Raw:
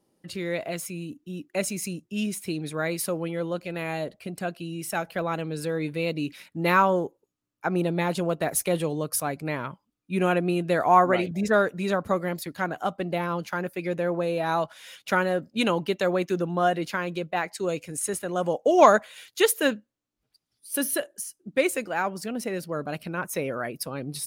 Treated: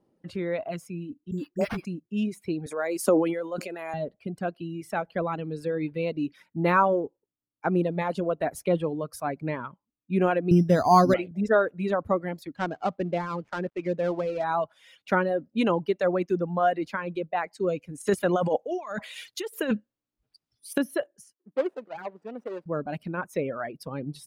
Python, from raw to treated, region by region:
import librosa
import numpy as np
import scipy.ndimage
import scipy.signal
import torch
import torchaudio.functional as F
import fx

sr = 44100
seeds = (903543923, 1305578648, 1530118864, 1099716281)

y = fx.chain(x, sr, fx.dispersion(late='highs', ms=66.0, hz=490.0),
    fx.resample_bad(factor=6, down='none', up='hold'),
    fx.band_squash(depth_pct=40), at=(1.31, 1.85))
y = fx.chain(y, sr, fx.highpass(hz=230.0, slope=24),
    fx.high_shelf_res(hz=5000.0, db=10.0, q=1.5),
    fx.sustainer(db_per_s=22.0), at=(2.66, 3.94))
y = fx.chain(y, sr, fx.bass_treble(bass_db=13, treble_db=-10),
    fx.resample_bad(factor=8, down='none', up='hold'), at=(10.51, 11.14))
y = fx.chain(y, sr, fx.dead_time(dead_ms=0.13),
    fx.lowpass(hz=8100.0, slope=12), at=(12.56, 14.44))
y = fx.chain(y, sr, fx.high_shelf(hz=2500.0, db=10.5),
    fx.over_compress(threshold_db=-27.0, ratio=-1.0), at=(18.0, 20.78))
y = fx.chain(y, sr, fx.median_filter(points=41),
    fx.highpass(hz=430.0, slope=12), at=(21.33, 22.66))
y = fx.dereverb_blind(y, sr, rt60_s=1.9)
y = fx.lowpass(y, sr, hz=1100.0, slope=6)
y = y * 10.0 ** (2.5 / 20.0)